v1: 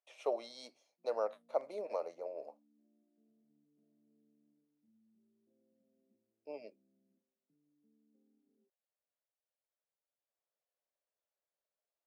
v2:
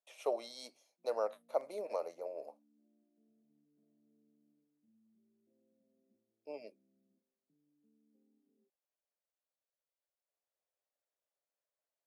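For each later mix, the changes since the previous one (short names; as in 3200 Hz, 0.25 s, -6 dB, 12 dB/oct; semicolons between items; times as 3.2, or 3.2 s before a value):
master: remove air absorption 65 m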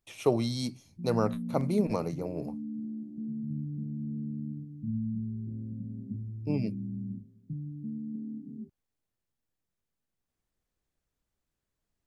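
background +7.0 dB; master: remove ladder high-pass 510 Hz, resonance 60%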